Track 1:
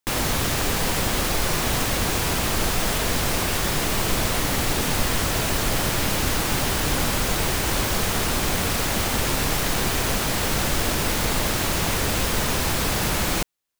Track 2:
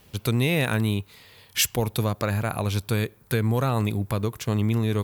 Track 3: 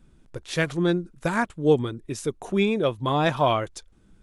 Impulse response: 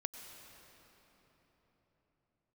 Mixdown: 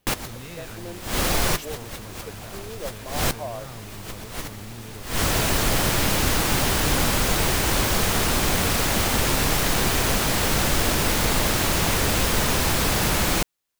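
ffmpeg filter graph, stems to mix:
-filter_complex "[0:a]volume=1.5dB[link_01];[1:a]asoftclip=type=tanh:threshold=-20.5dB,volume=-14.5dB,asplit=2[link_02][link_03];[2:a]alimiter=limit=-16dB:level=0:latency=1,bandpass=frequency=630:width_type=q:width=2.4:csg=0,volume=-5dB[link_04];[link_03]apad=whole_len=608272[link_05];[link_01][link_05]sidechaincompress=threshold=-59dB:ratio=8:attack=8.7:release=136[link_06];[link_06][link_02][link_04]amix=inputs=3:normalize=0"

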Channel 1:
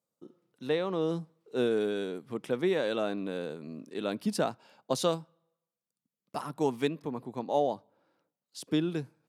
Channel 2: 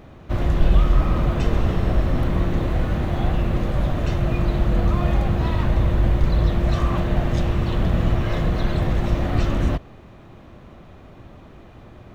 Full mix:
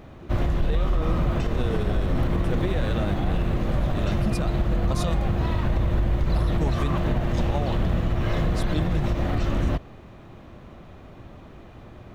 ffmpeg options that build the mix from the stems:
ffmpeg -i stem1.wav -i stem2.wav -filter_complex "[0:a]asubboost=boost=10:cutoff=120,volume=2dB[link_01];[1:a]volume=-0.5dB[link_02];[link_01][link_02]amix=inputs=2:normalize=0,alimiter=limit=-14.5dB:level=0:latency=1:release=84" out.wav

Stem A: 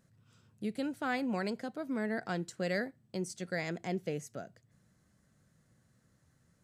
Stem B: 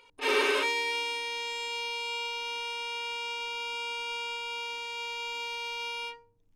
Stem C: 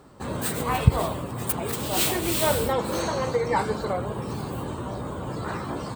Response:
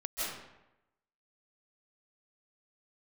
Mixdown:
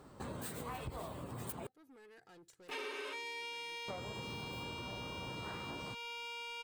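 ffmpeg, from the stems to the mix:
-filter_complex "[0:a]highshelf=frequency=6500:gain=10,aecho=1:1:2.4:0.7,asoftclip=type=tanh:threshold=-38dB,volume=-18dB[link_01];[1:a]aeval=exprs='val(0)*gte(abs(val(0)),0.00316)':channel_layout=same,adelay=2500,volume=-3.5dB[link_02];[2:a]volume=17dB,asoftclip=hard,volume=-17dB,volume=-6dB,asplit=3[link_03][link_04][link_05];[link_03]atrim=end=1.67,asetpts=PTS-STARTPTS,afade=type=out:start_time=1.666:duration=0.004:curve=hsin[link_06];[link_04]atrim=start=1.67:end=3.88,asetpts=PTS-STARTPTS,volume=0[link_07];[link_05]atrim=start=3.88,asetpts=PTS-STARTPTS,afade=type=in:duration=0.004:curve=hsin[link_08];[link_06][link_07][link_08]concat=n=3:v=0:a=1[link_09];[link_01][link_02][link_09]amix=inputs=3:normalize=0,acompressor=threshold=-42dB:ratio=5"

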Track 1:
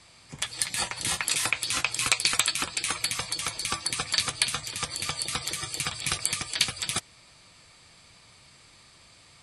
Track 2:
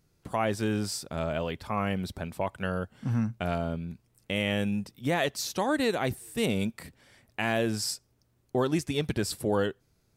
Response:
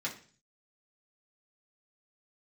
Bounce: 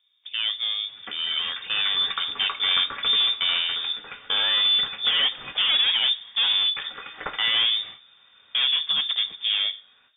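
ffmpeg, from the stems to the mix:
-filter_complex "[0:a]adelay=650,volume=-4dB,asplit=3[link_01][link_02][link_03];[link_01]atrim=end=5.83,asetpts=PTS-STARTPTS,afade=type=out:start_time=5.826:duration=0.004:curve=hsin[link_04];[link_02]atrim=start=5.83:end=6.76,asetpts=PTS-STARTPTS,volume=0[link_05];[link_03]atrim=start=6.76,asetpts=PTS-STARTPTS,afade=type=in:duration=0.004:curve=hsin[link_06];[link_04][link_05][link_06]concat=n=3:v=0:a=1,asplit=2[link_07][link_08];[link_08]volume=-5dB[link_09];[1:a]highshelf=frequency=2100:gain=-10,dynaudnorm=framelen=580:gausssize=7:maxgain=12dB,volume=22dB,asoftclip=hard,volume=-22dB,volume=0.5dB,asplit=3[link_10][link_11][link_12];[link_11]volume=-9.5dB[link_13];[link_12]apad=whole_len=444472[link_14];[link_07][link_14]sidechaincompress=threshold=-38dB:ratio=8:attack=16:release=701[link_15];[2:a]atrim=start_sample=2205[link_16];[link_09][link_13]amix=inputs=2:normalize=0[link_17];[link_17][link_16]afir=irnorm=-1:irlink=0[link_18];[link_15][link_10][link_18]amix=inputs=3:normalize=0,lowpass=frequency=3100:width_type=q:width=0.5098,lowpass=frequency=3100:width_type=q:width=0.6013,lowpass=frequency=3100:width_type=q:width=0.9,lowpass=frequency=3100:width_type=q:width=2.563,afreqshift=-3700"

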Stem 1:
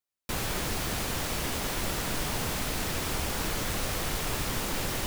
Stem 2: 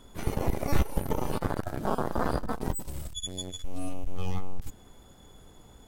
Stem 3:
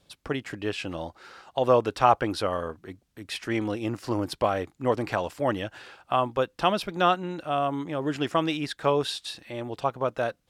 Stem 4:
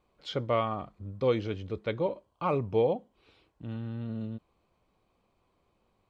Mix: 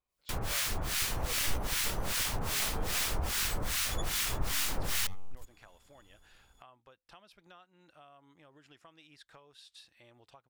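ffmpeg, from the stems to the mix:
ffmpeg -i stem1.wav -i stem2.wav -i stem3.wav -i stem4.wav -filter_complex "[0:a]acontrast=75,acrossover=split=1100[link_01][link_02];[link_01]aeval=exprs='val(0)*(1-1/2+1/2*cos(2*PI*2.5*n/s))':channel_layout=same[link_03];[link_02]aeval=exprs='val(0)*(1-1/2-1/2*cos(2*PI*2.5*n/s))':channel_layout=same[link_04];[link_03][link_04]amix=inputs=2:normalize=0,volume=-2dB[link_05];[1:a]adelay=750,volume=-9.5dB[link_06];[2:a]acompressor=threshold=-33dB:ratio=8,adelay=500,volume=-15.5dB[link_07];[3:a]volume=-15dB[link_08];[link_05][link_06][link_07][link_08]amix=inputs=4:normalize=0,equalizer=frequency=280:width=0.37:gain=-10" out.wav

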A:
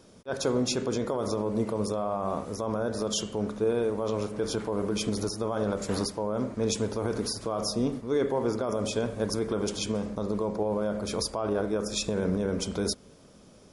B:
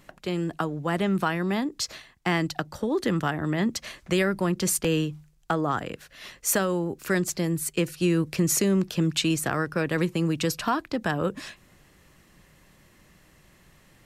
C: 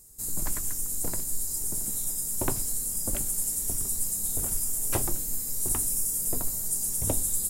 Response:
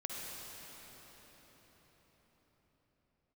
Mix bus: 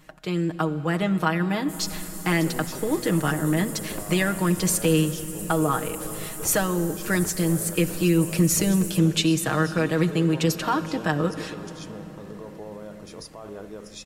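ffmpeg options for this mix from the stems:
-filter_complex "[0:a]adelay=2000,volume=-10.5dB[link_01];[1:a]aecho=1:1:6.4:0.65,volume=-1.5dB,asplit=2[link_02][link_03];[link_03]volume=-11dB[link_04];[2:a]adelay=1500,volume=-9.5dB,asplit=2[link_05][link_06];[link_06]volume=-12.5dB[link_07];[3:a]atrim=start_sample=2205[link_08];[link_04][link_07]amix=inputs=2:normalize=0[link_09];[link_09][link_08]afir=irnorm=-1:irlink=0[link_10];[link_01][link_02][link_05][link_10]amix=inputs=4:normalize=0"

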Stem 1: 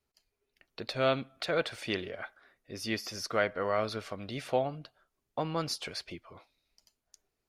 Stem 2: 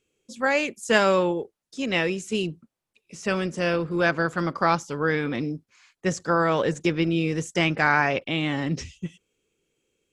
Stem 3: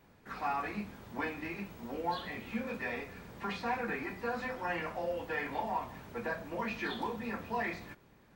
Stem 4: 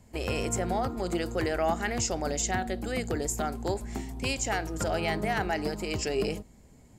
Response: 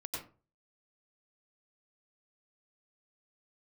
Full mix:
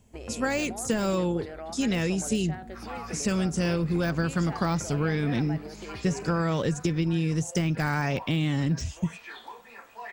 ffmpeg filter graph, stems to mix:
-filter_complex "[0:a]acompressor=threshold=-37dB:ratio=6,volume=-6dB[link_01];[1:a]deesser=0.85,bass=frequency=250:gain=14,treble=frequency=4000:gain=13,volume=-1.5dB[link_02];[2:a]highpass=640,adelay=2450,volume=-4dB[link_03];[3:a]aemphasis=mode=reproduction:type=75kf,volume=-4dB[link_04];[link_02][link_03]amix=inputs=2:normalize=0,acompressor=threshold=-23dB:ratio=6,volume=0dB[link_05];[link_01][link_04]amix=inputs=2:normalize=0,acompressor=threshold=-37dB:ratio=4,volume=0dB[link_06];[link_05][link_06]amix=inputs=2:normalize=0"

